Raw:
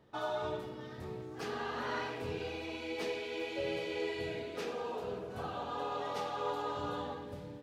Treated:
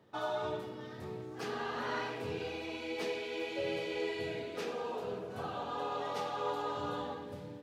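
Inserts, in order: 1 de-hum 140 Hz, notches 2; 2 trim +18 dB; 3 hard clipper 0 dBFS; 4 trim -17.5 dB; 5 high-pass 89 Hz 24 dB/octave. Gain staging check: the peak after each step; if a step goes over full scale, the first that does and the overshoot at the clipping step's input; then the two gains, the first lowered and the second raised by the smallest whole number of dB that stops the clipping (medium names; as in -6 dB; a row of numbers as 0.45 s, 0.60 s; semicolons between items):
-23.5 dBFS, -5.5 dBFS, -5.5 dBFS, -23.0 dBFS, -23.5 dBFS; nothing clips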